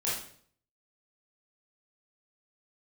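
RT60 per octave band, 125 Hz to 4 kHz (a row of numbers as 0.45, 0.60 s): 0.75, 0.60, 0.60, 0.50, 0.50, 0.50 s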